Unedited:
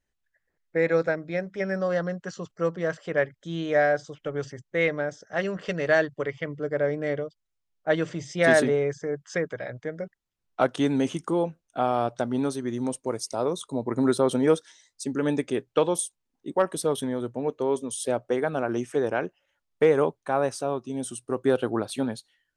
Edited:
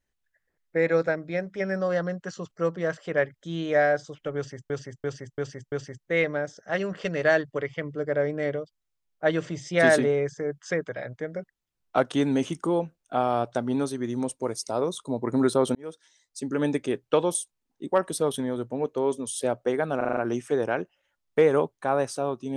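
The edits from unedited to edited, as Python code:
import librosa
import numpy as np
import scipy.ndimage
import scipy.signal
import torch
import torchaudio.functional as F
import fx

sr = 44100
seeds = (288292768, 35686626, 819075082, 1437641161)

y = fx.edit(x, sr, fx.repeat(start_s=4.36, length_s=0.34, count=5),
    fx.fade_in_span(start_s=14.39, length_s=0.86),
    fx.stutter(start_s=18.61, slice_s=0.04, count=6), tone=tone)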